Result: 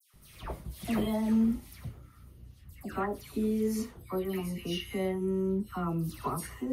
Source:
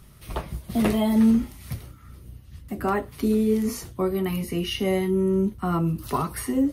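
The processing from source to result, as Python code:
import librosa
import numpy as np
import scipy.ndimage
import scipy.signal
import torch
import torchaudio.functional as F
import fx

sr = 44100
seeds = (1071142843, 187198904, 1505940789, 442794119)

y = fx.dispersion(x, sr, late='lows', ms=139.0, hz=2100.0)
y = F.gain(torch.from_numpy(y), -8.0).numpy()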